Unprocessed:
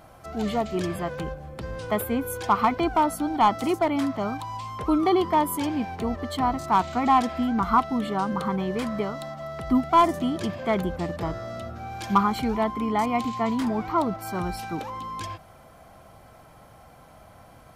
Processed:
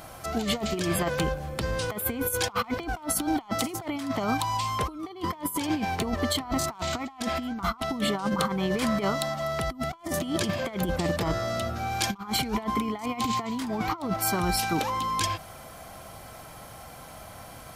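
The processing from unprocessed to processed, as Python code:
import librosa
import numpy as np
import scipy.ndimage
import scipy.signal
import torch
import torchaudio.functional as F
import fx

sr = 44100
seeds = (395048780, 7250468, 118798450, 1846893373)

y = fx.high_shelf(x, sr, hz=2400.0, db=10.0)
y = fx.over_compress(y, sr, threshold_db=-28.0, ratio=-0.5)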